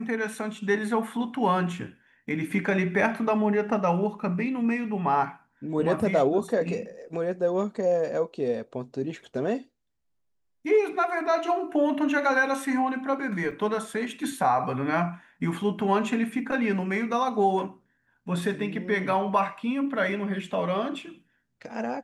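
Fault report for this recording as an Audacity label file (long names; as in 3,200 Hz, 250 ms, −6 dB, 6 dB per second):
13.510000	13.510000	drop-out 4.4 ms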